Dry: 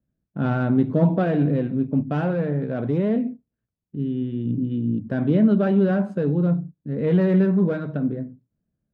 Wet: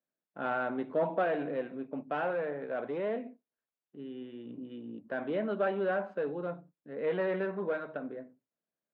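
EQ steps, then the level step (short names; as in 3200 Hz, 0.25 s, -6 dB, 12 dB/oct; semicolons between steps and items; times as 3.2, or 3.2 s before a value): Butterworth band-pass 1300 Hz, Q 0.5; -2.5 dB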